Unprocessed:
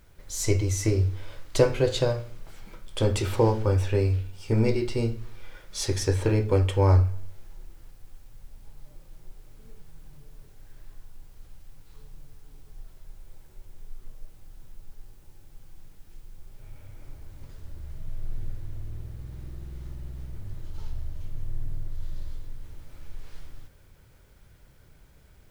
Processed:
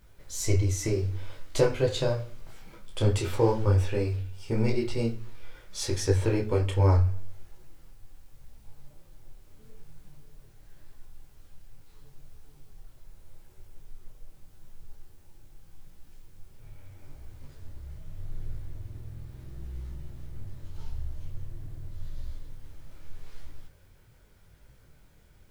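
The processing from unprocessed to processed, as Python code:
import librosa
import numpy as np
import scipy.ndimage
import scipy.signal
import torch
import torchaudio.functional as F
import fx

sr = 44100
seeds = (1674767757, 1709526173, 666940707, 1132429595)

y = fx.detune_double(x, sr, cents=28)
y = F.gain(torch.from_numpy(y), 1.5).numpy()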